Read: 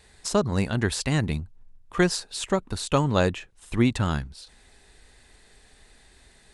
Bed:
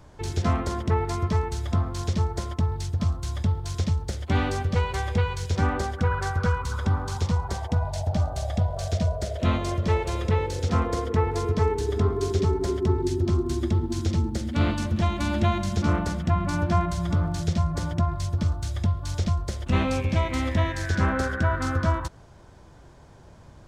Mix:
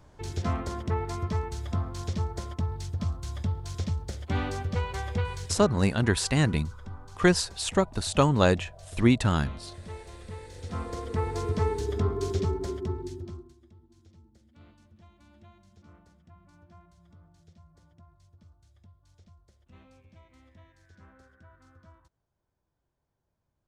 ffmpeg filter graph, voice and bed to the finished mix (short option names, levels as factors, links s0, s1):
-filter_complex "[0:a]adelay=5250,volume=1.06[s0];[1:a]volume=2.66,afade=t=out:st=5.38:d=0.3:silence=0.237137,afade=t=in:st=10.47:d=1.01:silence=0.199526,afade=t=out:st=12.32:d=1.22:silence=0.0398107[s1];[s0][s1]amix=inputs=2:normalize=0"